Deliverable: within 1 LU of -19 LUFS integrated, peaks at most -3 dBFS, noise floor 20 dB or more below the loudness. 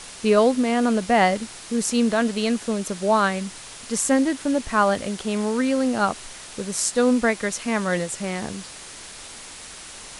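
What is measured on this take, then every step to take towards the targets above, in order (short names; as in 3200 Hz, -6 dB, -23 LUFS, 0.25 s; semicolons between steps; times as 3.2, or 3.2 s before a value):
noise floor -40 dBFS; noise floor target -42 dBFS; loudness -22.0 LUFS; peak -5.0 dBFS; loudness target -19.0 LUFS
-> noise print and reduce 6 dB; gain +3 dB; limiter -3 dBFS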